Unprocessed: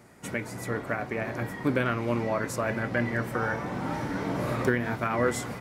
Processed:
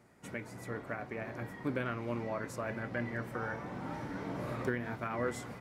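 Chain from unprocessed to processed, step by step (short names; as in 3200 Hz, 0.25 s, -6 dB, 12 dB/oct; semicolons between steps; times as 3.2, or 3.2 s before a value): high shelf 4800 Hz -4.5 dB; gain -9 dB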